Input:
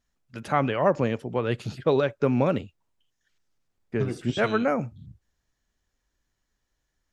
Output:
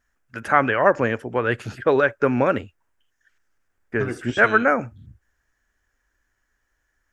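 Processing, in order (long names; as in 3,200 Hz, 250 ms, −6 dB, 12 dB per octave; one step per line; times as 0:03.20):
graphic EQ with 15 bands 160 Hz −10 dB, 1,600 Hz +11 dB, 4,000 Hz −8 dB
level +4 dB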